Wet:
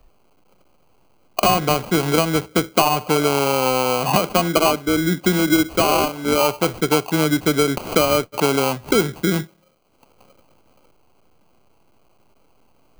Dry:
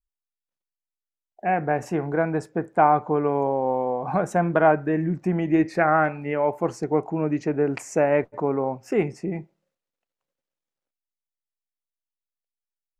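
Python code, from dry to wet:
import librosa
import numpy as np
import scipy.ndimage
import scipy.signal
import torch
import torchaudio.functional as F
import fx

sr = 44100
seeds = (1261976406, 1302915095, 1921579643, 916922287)

y = fx.highpass(x, sr, hz=180.0, slope=24, at=(4.15, 6.41))
y = fx.sample_hold(y, sr, seeds[0], rate_hz=1800.0, jitter_pct=0)
y = fx.band_squash(y, sr, depth_pct=100)
y = y * librosa.db_to_amplitude(4.0)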